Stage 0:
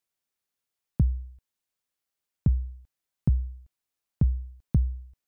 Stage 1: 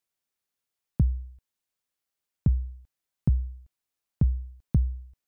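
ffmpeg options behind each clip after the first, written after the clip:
ffmpeg -i in.wav -af anull out.wav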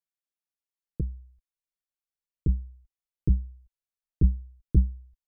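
ffmpeg -i in.wav -af "aecho=1:1:6.1:0.35,asubboost=boost=6:cutoff=80,aeval=exprs='0.422*(cos(1*acos(clip(val(0)/0.422,-1,1)))-cos(1*PI/2))+0.106*(cos(3*acos(clip(val(0)/0.422,-1,1)))-cos(3*PI/2))':channel_layout=same,volume=-1.5dB" out.wav

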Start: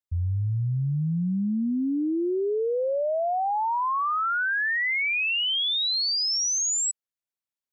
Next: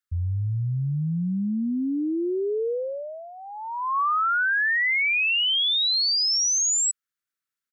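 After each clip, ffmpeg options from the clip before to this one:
ffmpeg -i in.wav -af "firequalizer=gain_entry='entry(470,0);entry(720,-17);entry(1300,12);entry(2500,3)':delay=0.05:min_phase=1,alimiter=limit=-19.5dB:level=0:latency=1" out.wav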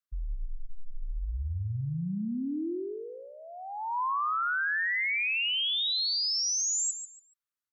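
ffmpeg -i in.wav -af "aecho=1:1:142|284|426:0.316|0.0759|0.0182,afreqshift=-130,volume=-7dB" out.wav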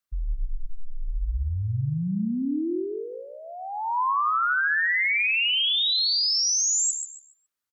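ffmpeg -i in.wav -af "aecho=1:1:128:0.282,volume=5.5dB" out.wav

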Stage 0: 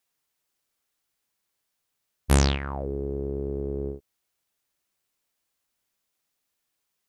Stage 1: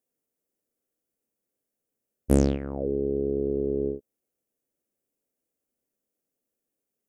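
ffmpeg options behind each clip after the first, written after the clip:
ffmpeg -i in.wav -af "equalizer=frequency=250:width_type=o:width=1:gain=10,equalizer=frequency=500:width_type=o:width=1:gain=11,equalizer=frequency=1000:width_type=o:width=1:gain=-9,equalizer=frequency=2000:width_type=o:width=1:gain=-4,equalizer=frequency=4000:width_type=o:width=1:gain=-12,volume=-5dB" out.wav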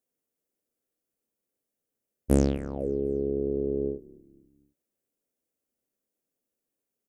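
ffmpeg -i in.wav -filter_complex "[0:a]asplit=4[link_01][link_02][link_03][link_04];[link_02]adelay=248,afreqshift=-40,volume=-23dB[link_05];[link_03]adelay=496,afreqshift=-80,volume=-29.6dB[link_06];[link_04]adelay=744,afreqshift=-120,volume=-36.1dB[link_07];[link_01][link_05][link_06][link_07]amix=inputs=4:normalize=0,volume=-1.5dB" out.wav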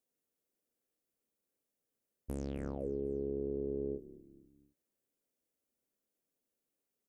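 ffmpeg -i in.wav -af "acompressor=threshold=-27dB:ratio=2.5,alimiter=level_in=1.5dB:limit=-24dB:level=0:latency=1:release=34,volume=-1.5dB,volume=-2.5dB" out.wav

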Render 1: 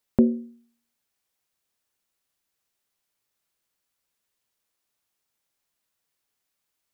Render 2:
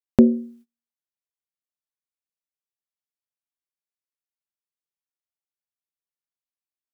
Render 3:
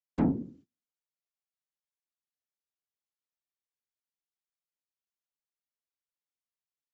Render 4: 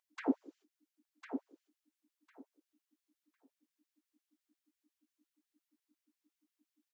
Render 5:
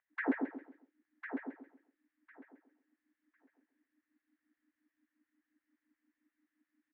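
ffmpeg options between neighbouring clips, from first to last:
ffmpeg -i in.wav -af "agate=range=-26dB:threshold=-53dB:ratio=16:detection=peak,volume=5dB" out.wav
ffmpeg -i in.wav -af "aresample=16000,asoftclip=type=tanh:threshold=-17dB,aresample=44100,afftfilt=real='hypot(re,im)*cos(2*PI*random(0))':imag='hypot(re,im)*sin(2*PI*random(1))':win_size=512:overlap=0.75" out.wav
ffmpeg -i in.wav -af "aeval=exprs='val(0)+0.00126*(sin(2*PI*60*n/s)+sin(2*PI*2*60*n/s)/2+sin(2*PI*3*60*n/s)/3+sin(2*PI*4*60*n/s)/4+sin(2*PI*5*60*n/s)/5)':channel_layout=same,aecho=1:1:1052|2104|3156:0.422|0.0717|0.0122,afftfilt=real='re*gte(b*sr/1024,250*pow(1600/250,0.5+0.5*sin(2*PI*5.7*pts/sr)))':imag='im*gte(b*sr/1024,250*pow(1600/250,0.5+0.5*sin(2*PI*5.7*pts/sr)))':win_size=1024:overlap=0.75,volume=3.5dB" out.wav
ffmpeg -i in.wav -af "lowpass=frequency=1800:width_type=q:width=5.5,aecho=1:1:134|268|402|536:0.562|0.169|0.0506|0.0152,volume=-1dB" out.wav

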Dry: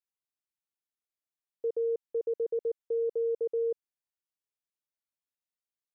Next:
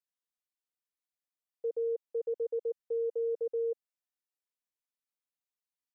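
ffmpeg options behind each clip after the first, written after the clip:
ffmpeg -i in.wav -af "highpass=260,aecho=1:1:4:0.7,volume=-5.5dB" out.wav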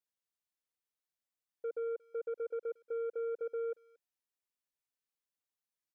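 ffmpeg -i in.wav -filter_complex "[0:a]asplit=2[link_01][link_02];[link_02]adelay=230,highpass=300,lowpass=3400,asoftclip=type=hard:threshold=-37dB,volume=-25dB[link_03];[link_01][link_03]amix=inputs=2:normalize=0,asoftclip=type=tanh:threshold=-31.5dB,volume=-1.5dB" out.wav

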